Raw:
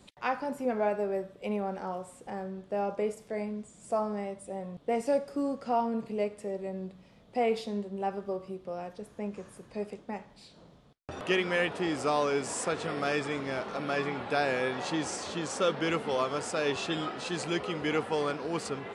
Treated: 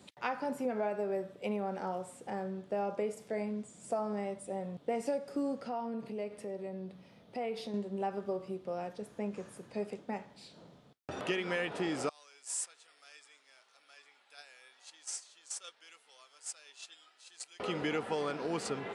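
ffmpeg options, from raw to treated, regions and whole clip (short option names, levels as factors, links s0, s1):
-filter_complex "[0:a]asettb=1/sr,asplit=3[s0][s1][s2];[s0]atrim=end=5.604[s3];[s1]atrim=start=5.6:end=7.74,asetpts=PTS-STARTPTS,afade=t=in:d=0.004:c=qsin,afade=t=out:st=2.136:d=0.004:c=qsin,equalizer=f=7400:t=o:w=0.22:g=-7,bandreject=f=7200:w=28,acompressor=threshold=0.01:ratio=2:attack=3.2:release=140:knee=1:detection=peak[s4];[s2]atrim=start=7.736[s5];[s3][s4]acrossfade=d=0.004:c1=hsin:c2=qsin[s6];[s6][s5]acrossfade=d=0.004:c1=qsin:c2=hsin,asettb=1/sr,asplit=3[s7][s8][s9];[s7]atrim=end=12.094[s10];[s8]atrim=start=12.09:end=17.6,asetpts=PTS-STARTPTS,afade=t=in:d=0.004:c=qsin,afade=t=out:st=5.506:d=0.004:c=qsin,highpass=f=480:p=1,aderivative,agate=range=0.251:threshold=0.00794:ratio=16:release=100:detection=peak[s11];[s9]atrim=start=17.596[s12];[s10][s11]acrossfade=d=0.004:c1=hsin:c2=qsin[s13];[s13][s12]acrossfade=d=0.004:c1=qsin:c2=hsin,highpass=110,bandreject=f=1100:w=17,acompressor=threshold=0.0316:ratio=6"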